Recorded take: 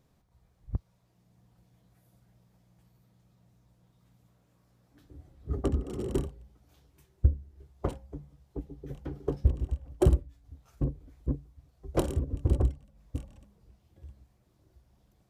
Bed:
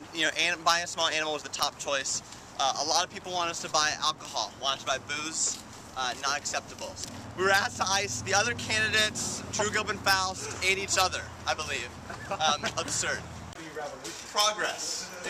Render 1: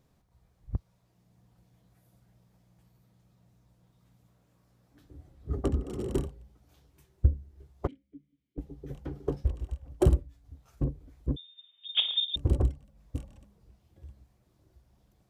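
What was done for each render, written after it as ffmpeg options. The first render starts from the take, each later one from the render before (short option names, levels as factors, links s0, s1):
-filter_complex "[0:a]asettb=1/sr,asplit=3[s0][s1][s2];[s0]atrim=end=7.874[s3];[s1]atrim=start=7.87:end=8.58,asetpts=PTS-STARTPTS,afade=t=in:d=0.004:c=qsin,afade=t=out:st=0.706:d=0.004:c=qsin,asplit=3[s4][s5][s6];[s4]bandpass=f=270:t=q:w=8,volume=1[s7];[s5]bandpass=f=2290:t=q:w=8,volume=0.501[s8];[s6]bandpass=f=3010:t=q:w=8,volume=0.355[s9];[s7][s8][s9]amix=inputs=3:normalize=0[s10];[s2]atrim=start=8.576[s11];[s3][s10]acrossfade=d=0.004:c1=hsin:c2=qsin[s12];[s12][s11]acrossfade=d=0.004:c1=qsin:c2=hsin,asettb=1/sr,asplit=3[s13][s14][s15];[s13]atrim=end=9.424[s16];[s14]atrim=start=9.42:end=9.83,asetpts=PTS-STARTPTS,afade=t=in:d=0.004:c=qsin,afade=t=out:st=0.406:d=0.004:c=qsin,equalizer=f=180:t=o:w=2.4:g=-10.5[s17];[s15]atrim=start=9.826[s18];[s16][s17]acrossfade=d=0.004:c1=hsin:c2=qsin[s19];[s19][s18]acrossfade=d=0.004:c1=qsin:c2=hsin,asettb=1/sr,asplit=3[s20][s21][s22];[s20]atrim=end=11.364[s23];[s21]atrim=start=11.36:end=12.36,asetpts=PTS-STARTPTS,afade=t=in:d=0.004:c=qsin,afade=t=out:st=0.996:d=0.004:c=qsin,lowpass=f=3100:t=q:w=0.5098,lowpass=f=3100:t=q:w=0.6013,lowpass=f=3100:t=q:w=0.9,lowpass=f=3100:t=q:w=2.563,afreqshift=-3700[s24];[s22]atrim=start=12.356[s25];[s23][s24]acrossfade=d=0.004:c1=hsin:c2=qsin[s26];[s26][s25]acrossfade=d=0.004:c1=qsin:c2=hsin"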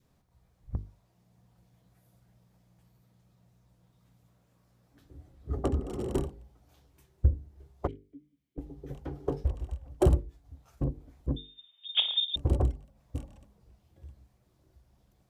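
-af "bandreject=f=50:t=h:w=6,bandreject=f=100:t=h:w=6,bandreject=f=150:t=h:w=6,bandreject=f=200:t=h:w=6,bandreject=f=250:t=h:w=6,bandreject=f=300:t=h:w=6,bandreject=f=350:t=h:w=6,bandreject=f=400:t=h:w=6,bandreject=f=450:t=h:w=6,adynamicequalizer=threshold=0.00224:dfrequency=770:dqfactor=1.4:tfrequency=770:tqfactor=1.4:attack=5:release=100:ratio=0.375:range=3:mode=boostabove:tftype=bell"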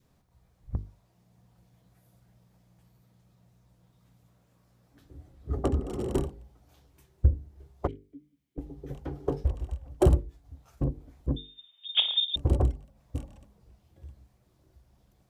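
-af "volume=1.26"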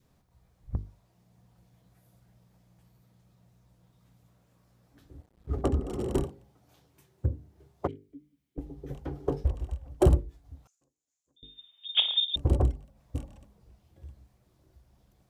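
-filter_complex "[0:a]asettb=1/sr,asplit=3[s0][s1][s2];[s0]atrim=end=5.174[s3];[s1]atrim=start=5.17:end=5.62,asetpts=PTS-STARTPTS,afade=t=in:d=0.004:c=qsin,afade=t=out:st=0.446:d=0.004:c=qsin,aeval=exprs='sgn(val(0))*max(abs(val(0))-0.00188,0)':c=same[s4];[s2]atrim=start=5.616[s5];[s3][s4]acrossfade=d=0.004:c1=hsin:c2=qsin[s6];[s6][s5]acrossfade=d=0.004:c1=qsin:c2=hsin,asettb=1/sr,asplit=3[s7][s8][s9];[s7]atrim=end=6.244[s10];[s8]atrim=start=6.24:end=8.09,asetpts=PTS-STARTPTS,afade=t=in:d=0.004:c=qsin,afade=t=out:st=1.846:d=0.004:c=qsin,highpass=f=91:w=0.5412,highpass=f=91:w=1.3066[s11];[s9]atrim=start=8.086[s12];[s10][s11]acrossfade=d=0.004:c1=hsin:c2=qsin[s13];[s13][s12]acrossfade=d=0.004:c1=qsin:c2=hsin,asettb=1/sr,asplit=3[s14][s15][s16];[s14]atrim=end=10.674[s17];[s15]atrim=start=10.67:end=11.43,asetpts=PTS-STARTPTS,afade=t=in:d=0.004:c=qsin,afade=t=out:st=0.756:d=0.004:c=qsin,bandpass=f=6900:t=q:w=6.8[s18];[s16]atrim=start=11.426[s19];[s17][s18]acrossfade=d=0.004:c1=hsin:c2=qsin[s20];[s20][s19]acrossfade=d=0.004:c1=qsin:c2=hsin"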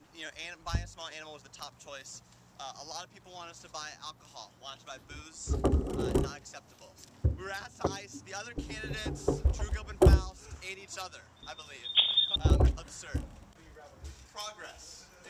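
-filter_complex "[1:a]volume=0.158[s0];[0:a][s0]amix=inputs=2:normalize=0"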